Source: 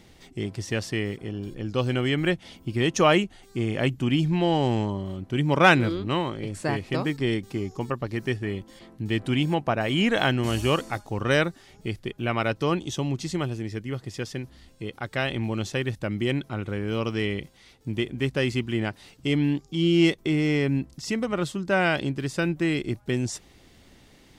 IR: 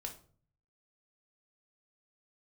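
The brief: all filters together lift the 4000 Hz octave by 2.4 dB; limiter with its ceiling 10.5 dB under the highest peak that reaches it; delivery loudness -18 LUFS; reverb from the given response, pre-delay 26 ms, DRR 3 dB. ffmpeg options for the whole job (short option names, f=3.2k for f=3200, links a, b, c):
-filter_complex "[0:a]equalizer=f=4k:t=o:g=3.5,alimiter=limit=-14dB:level=0:latency=1,asplit=2[a][b];[1:a]atrim=start_sample=2205,adelay=26[c];[b][c]afir=irnorm=-1:irlink=0,volume=-0.5dB[d];[a][d]amix=inputs=2:normalize=0,volume=7.5dB"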